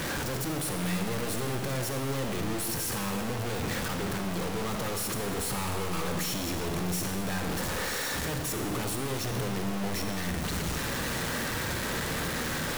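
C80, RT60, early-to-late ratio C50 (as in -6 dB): 7.0 dB, 1.6 s, 5.5 dB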